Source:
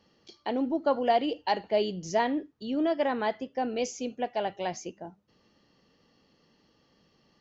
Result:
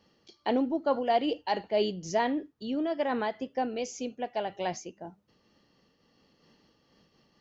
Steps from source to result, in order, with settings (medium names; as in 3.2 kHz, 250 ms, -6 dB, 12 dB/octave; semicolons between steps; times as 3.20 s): random flutter of the level, depth 65%; trim +4 dB